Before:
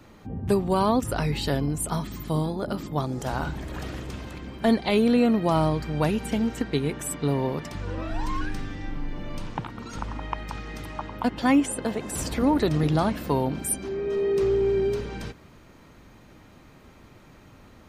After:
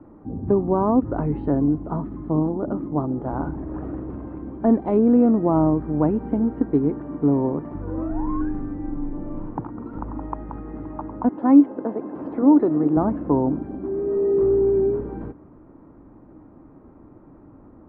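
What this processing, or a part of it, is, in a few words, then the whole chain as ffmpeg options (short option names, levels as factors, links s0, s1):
under water: -filter_complex "[0:a]lowpass=f=1100:w=0.5412,lowpass=f=1100:w=1.3066,equalizer=f=300:t=o:w=0.57:g=11,asettb=1/sr,asplit=3[s0][s1][s2];[s0]atrim=end=11.294[s3];[s1]atrim=start=11.29:end=12.97,asetpts=PTS-STARTPTS,afade=t=in:d=0.004:c=qsin,afade=t=out:st=1.676:d=0.004:c=qsin,highpass=240[s4];[s2]atrim=start=12.966[s5];[s3][s4]acrossfade=d=0.004:c1=hsin:c2=qsin[s6];[s6][s5]acrossfade=d=0.004:c1=qsin:c2=hsin,highshelf=f=2500:g=9.5"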